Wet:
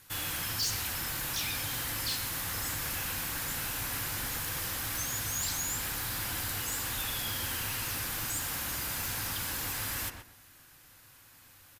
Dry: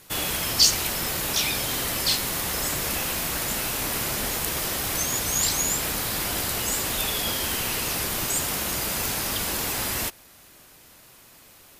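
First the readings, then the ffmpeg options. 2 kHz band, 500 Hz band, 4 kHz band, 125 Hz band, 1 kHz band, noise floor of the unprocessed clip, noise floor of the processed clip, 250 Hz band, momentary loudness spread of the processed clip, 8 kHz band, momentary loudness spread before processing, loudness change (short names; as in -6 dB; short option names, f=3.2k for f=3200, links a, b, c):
-6.5 dB, -13.5 dB, -10.0 dB, -5.0 dB, -8.5 dB, -52 dBFS, -57 dBFS, -10.5 dB, 2 LU, -9.0 dB, 4 LU, -8.5 dB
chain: -filter_complex "[0:a]equalizer=f=100:t=o:w=0.33:g=8,equalizer=f=200:t=o:w=0.33:g=-7,equalizer=f=400:t=o:w=0.33:g=-11,equalizer=f=630:t=o:w=0.33:g=-8,equalizer=f=1.6k:t=o:w=0.33:g=5,equalizer=f=12.5k:t=o:w=0.33:g=3,asoftclip=type=tanh:threshold=-21dB,asplit=2[a][b];[b]adelay=125,lowpass=f=1.7k:p=1,volume=-5dB,asplit=2[c][d];[d]adelay=125,lowpass=f=1.7k:p=1,volume=0.25,asplit=2[e][f];[f]adelay=125,lowpass=f=1.7k:p=1,volume=0.25[g];[a][c][e][g]amix=inputs=4:normalize=0,volume=-7dB"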